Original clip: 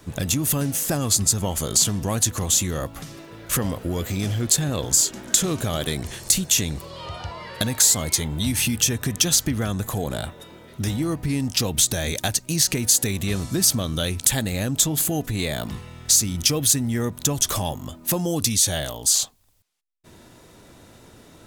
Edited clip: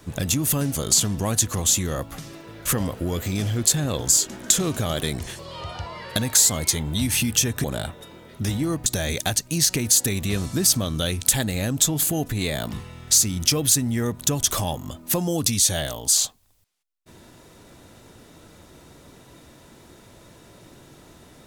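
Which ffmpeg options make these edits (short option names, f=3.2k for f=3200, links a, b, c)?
-filter_complex "[0:a]asplit=5[a][b][c][d][e];[a]atrim=end=0.752[f];[b]atrim=start=1.588:end=6.232[g];[c]atrim=start=6.838:end=9.092[h];[d]atrim=start=10.028:end=11.252[i];[e]atrim=start=11.838[j];[f][g]acrossfade=d=0.004:c1=hsin:c2=hsin[k];[k][h]acrossfade=d=0.004:c1=hsin:c2=hsin[l];[l][i]acrossfade=d=0.004:c1=hsin:c2=hsin[m];[m][j]acrossfade=d=0.004:c1=hsin:c2=hsin"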